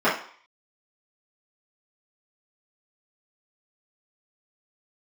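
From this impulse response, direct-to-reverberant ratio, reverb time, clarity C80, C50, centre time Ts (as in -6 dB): -12.5 dB, 0.50 s, 11.5 dB, 6.0 dB, 33 ms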